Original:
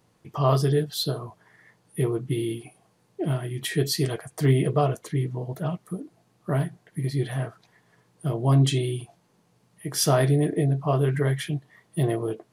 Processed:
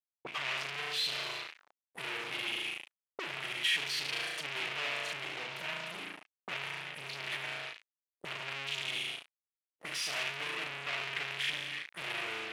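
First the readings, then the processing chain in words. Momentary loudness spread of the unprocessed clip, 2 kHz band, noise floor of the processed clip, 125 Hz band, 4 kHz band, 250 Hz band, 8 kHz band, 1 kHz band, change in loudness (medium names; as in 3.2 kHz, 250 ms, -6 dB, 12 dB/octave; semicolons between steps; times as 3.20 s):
14 LU, +4.5 dB, under -85 dBFS, -31.5 dB, 0.0 dB, -26.0 dB, -11.0 dB, -10.0 dB, -10.0 dB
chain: flutter echo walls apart 6.2 m, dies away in 0.78 s; fuzz box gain 43 dB, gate -43 dBFS; auto-wah 400–2600 Hz, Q 2.6, up, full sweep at -20 dBFS; trim -7.5 dB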